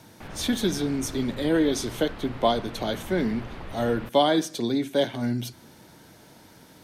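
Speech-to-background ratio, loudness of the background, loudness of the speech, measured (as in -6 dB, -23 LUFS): 15.0 dB, -41.0 LUFS, -26.0 LUFS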